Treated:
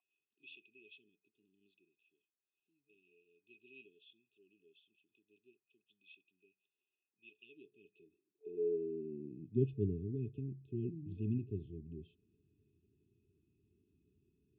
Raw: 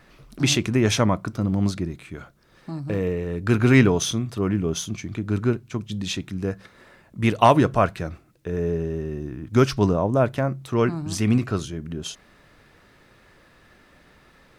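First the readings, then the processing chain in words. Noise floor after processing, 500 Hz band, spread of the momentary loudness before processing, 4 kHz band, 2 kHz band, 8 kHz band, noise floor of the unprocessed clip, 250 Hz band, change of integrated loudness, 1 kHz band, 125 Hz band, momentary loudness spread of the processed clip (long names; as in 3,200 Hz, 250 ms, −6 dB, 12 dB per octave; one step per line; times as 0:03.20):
below −85 dBFS, −19.5 dB, 16 LU, below −35 dB, −32.5 dB, below −40 dB, −55 dBFS, −22.5 dB, −17.0 dB, below −40 dB, −20.0 dB, 23 LU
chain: high-pass filter sweep 1,700 Hz → 84 Hz, 0:07.29–0:10.02
brick-wall band-stop 440–2,500 Hz
formant resonators in series a
level +8 dB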